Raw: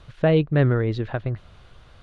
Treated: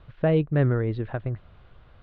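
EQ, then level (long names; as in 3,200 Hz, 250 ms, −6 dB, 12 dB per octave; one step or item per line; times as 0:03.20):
high-frequency loss of the air 320 metres
−2.5 dB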